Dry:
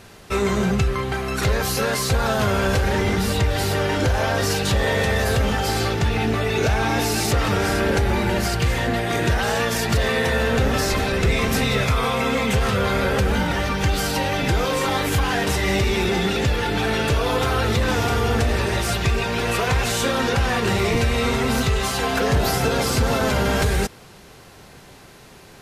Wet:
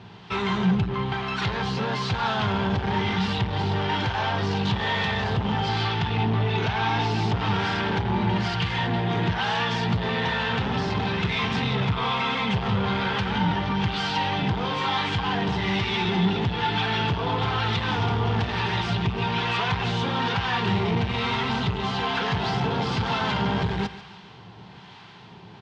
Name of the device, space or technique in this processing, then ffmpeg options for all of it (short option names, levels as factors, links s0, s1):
guitar amplifier with harmonic tremolo: -filter_complex "[0:a]asettb=1/sr,asplit=3[s0][s1][s2];[s0]atrim=end=5.694[s3];[s1]atrim=start=5.69:end=7.11,asetpts=PTS-STARTPTS,afade=t=in:d=0.004:c=qsin,afade=t=out:st=1.416:d=0.004:c=qsin,lowpass=7100[s4];[s2]atrim=start=7.106[s5];[s3][s4]acrossfade=d=0.004:c1=hsin:c2=qsin[s6];[s6][s5]acrossfade=d=0.004:c1=qsin:c2=hsin,aecho=1:1:144|288|432:0.126|0.0478|0.0182,acrossover=split=810[s7][s8];[s7]aeval=exprs='val(0)*(1-0.5/2+0.5/2*cos(2*PI*1.1*n/s))':c=same[s9];[s8]aeval=exprs='val(0)*(1-0.5/2-0.5/2*cos(2*PI*1.1*n/s))':c=same[s10];[s9][s10]amix=inputs=2:normalize=0,asoftclip=type=tanh:threshold=0.0841,highpass=100,equalizer=f=110:t=q:w=4:g=8,equalizer=f=180:t=q:w=4:g=9,equalizer=f=270:t=q:w=4:g=-3,equalizer=f=550:t=q:w=4:g=-9,equalizer=f=910:t=q:w=4:g=9,equalizer=f=3200:t=q:w=4:g=7,lowpass=f=4600:w=0.5412,lowpass=f=4600:w=1.3066"